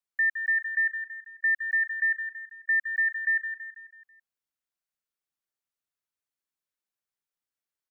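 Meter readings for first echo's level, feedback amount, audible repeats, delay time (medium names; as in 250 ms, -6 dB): -8.5 dB, 47%, 5, 164 ms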